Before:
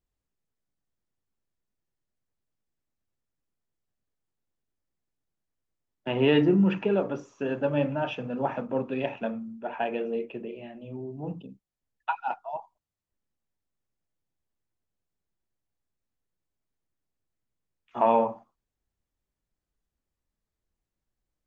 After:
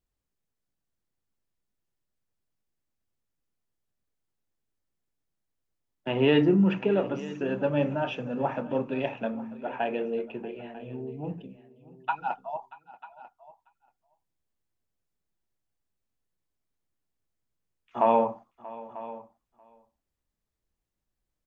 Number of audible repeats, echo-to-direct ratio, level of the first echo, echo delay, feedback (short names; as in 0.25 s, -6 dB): 2, -15.5 dB, -19.5 dB, 0.633 s, no steady repeat